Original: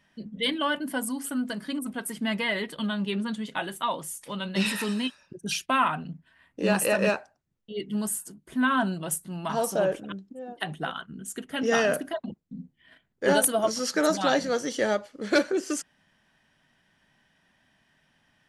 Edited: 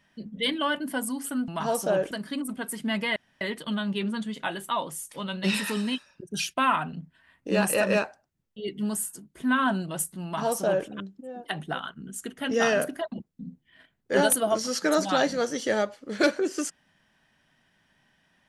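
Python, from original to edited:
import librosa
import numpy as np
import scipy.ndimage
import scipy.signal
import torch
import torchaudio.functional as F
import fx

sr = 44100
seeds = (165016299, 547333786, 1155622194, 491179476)

y = fx.edit(x, sr, fx.insert_room_tone(at_s=2.53, length_s=0.25),
    fx.duplicate(start_s=9.37, length_s=0.63, to_s=1.48), tone=tone)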